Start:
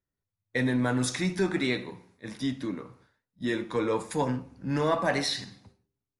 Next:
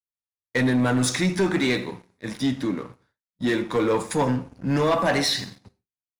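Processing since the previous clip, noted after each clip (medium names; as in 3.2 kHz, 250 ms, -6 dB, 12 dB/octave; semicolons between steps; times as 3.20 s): gate with hold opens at -53 dBFS; waveshaping leveller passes 2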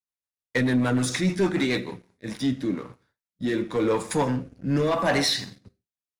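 rotary cabinet horn 6.7 Hz, later 0.9 Hz, at 1.75 s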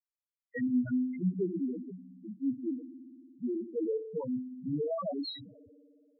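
spring tank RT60 2.6 s, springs 59 ms, chirp 70 ms, DRR 10.5 dB; loudest bins only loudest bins 2; trim -5.5 dB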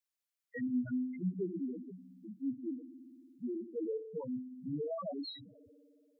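tape noise reduction on one side only encoder only; trim -5 dB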